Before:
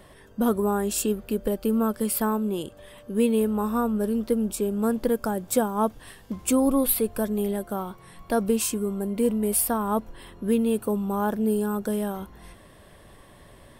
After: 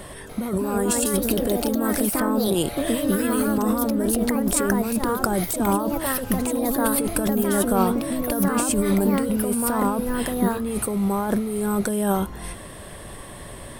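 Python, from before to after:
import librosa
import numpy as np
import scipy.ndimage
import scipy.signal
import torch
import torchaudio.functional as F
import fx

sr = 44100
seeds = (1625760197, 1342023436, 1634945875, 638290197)

y = fx.peak_eq(x, sr, hz=8900.0, db=8.5, octaves=0.44)
y = fx.over_compress(y, sr, threshold_db=-30.0, ratio=-1.0)
y = fx.echo_pitch(y, sr, ms=293, semitones=3, count=2, db_per_echo=-3.0)
y = fx.band_squash(y, sr, depth_pct=100, at=(1.3, 3.58))
y = y * librosa.db_to_amplitude(6.0)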